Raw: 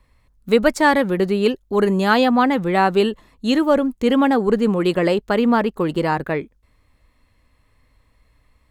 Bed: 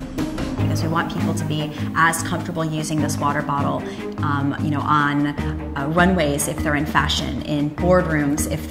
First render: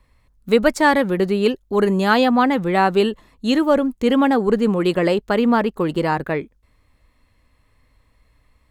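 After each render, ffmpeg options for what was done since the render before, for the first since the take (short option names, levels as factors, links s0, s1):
-af anull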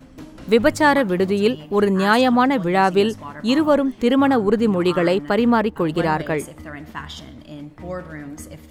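-filter_complex "[1:a]volume=0.188[s0];[0:a][s0]amix=inputs=2:normalize=0"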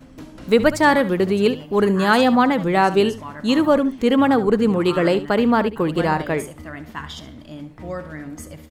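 -af "aecho=1:1:70:0.188"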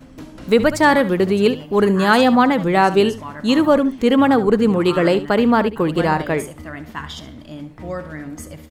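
-af "volume=1.26,alimiter=limit=0.794:level=0:latency=1"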